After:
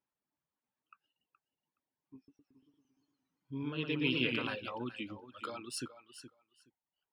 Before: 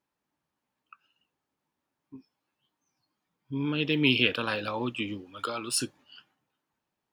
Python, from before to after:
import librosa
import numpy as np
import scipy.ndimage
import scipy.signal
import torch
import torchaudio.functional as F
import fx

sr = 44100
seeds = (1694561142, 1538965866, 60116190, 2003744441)

y = fx.high_shelf(x, sr, hz=4800.0, db=-7.5)
y = fx.echo_feedback(y, sr, ms=421, feedback_pct=16, wet_db=-12)
y = fx.dereverb_blind(y, sr, rt60_s=0.81)
y = fx.echo_warbled(y, sr, ms=115, feedback_pct=64, rate_hz=2.8, cents=150, wet_db=-4, at=(2.16, 4.47))
y = F.gain(torch.from_numpy(y), -8.0).numpy()